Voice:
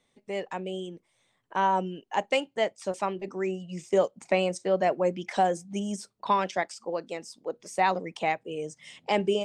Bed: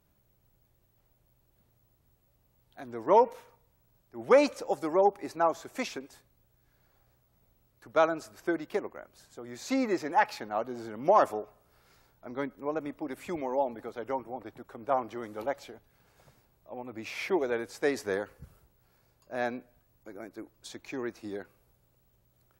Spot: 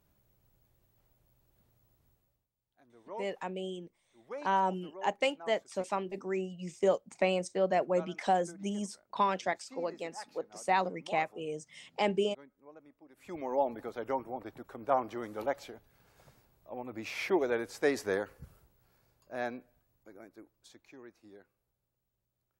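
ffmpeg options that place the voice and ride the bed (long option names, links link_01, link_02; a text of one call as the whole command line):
ffmpeg -i stem1.wav -i stem2.wav -filter_complex "[0:a]adelay=2900,volume=-4dB[link_01];[1:a]volume=19.5dB,afade=type=out:start_time=2.06:duration=0.42:silence=0.1,afade=type=in:start_time=13.14:duration=0.47:silence=0.0891251,afade=type=out:start_time=18.31:duration=2.67:silence=0.158489[link_02];[link_01][link_02]amix=inputs=2:normalize=0" out.wav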